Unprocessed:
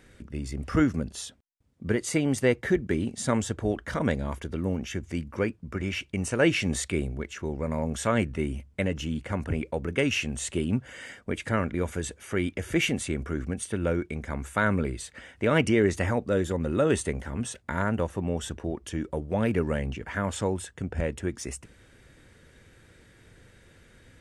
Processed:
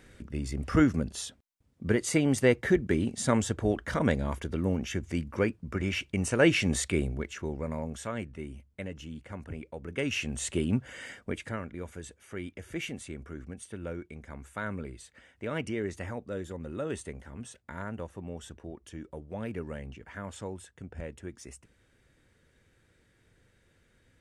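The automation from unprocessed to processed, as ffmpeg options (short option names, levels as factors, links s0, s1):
-af "volume=3.16,afade=t=out:st=7.11:d=1.01:silence=0.281838,afade=t=in:st=9.79:d=0.68:silence=0.316228,afade=t=out:st=11.16:d=0.43:silence=0.316228"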